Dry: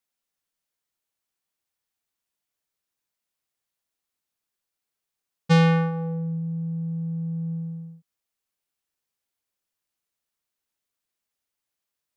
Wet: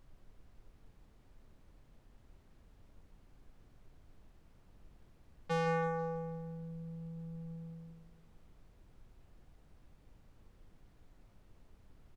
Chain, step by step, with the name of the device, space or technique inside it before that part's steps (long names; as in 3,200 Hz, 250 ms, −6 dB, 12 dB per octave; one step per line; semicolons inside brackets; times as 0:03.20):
aircraft cabin announcement (band-pass filter 360–4,000 Hz; soft clipping −18 dBFS, distortion −11 dB; brown noise bed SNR 11 dB)
repeating echo 164 ms, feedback 47%, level −11 dB
level −6 dB